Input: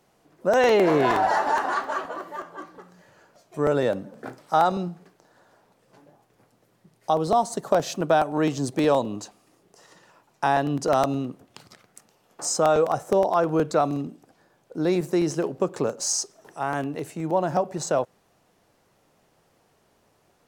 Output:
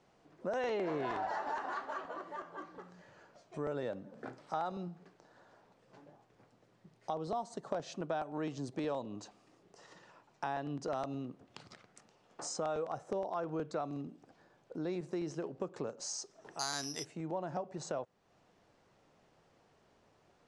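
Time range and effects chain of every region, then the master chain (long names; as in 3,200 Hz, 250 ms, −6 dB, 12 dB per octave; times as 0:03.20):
0:16.59–0:17.05: parametric band 2,200 Hz +9.5 dB 2 octaves + notch filter 520 Hz, Q 6 + bad sample-rate conversion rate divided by 8×, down filtered, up zero stuff
whole clip: Bessel low-pass filter 5,500 Hz, order 8; downward compressor 2 to 1, threshold −40 dBFS; level −4 dB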